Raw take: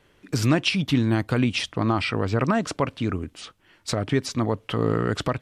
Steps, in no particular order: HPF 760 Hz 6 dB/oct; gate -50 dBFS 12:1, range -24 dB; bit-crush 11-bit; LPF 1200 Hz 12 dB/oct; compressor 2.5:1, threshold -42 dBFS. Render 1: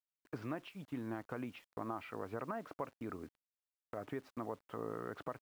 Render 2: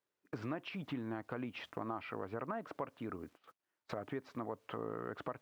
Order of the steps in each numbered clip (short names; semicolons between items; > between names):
HPF > compressor > LPF > gate > bit-crush; LPF > bit-crush > HPF > gate > compressor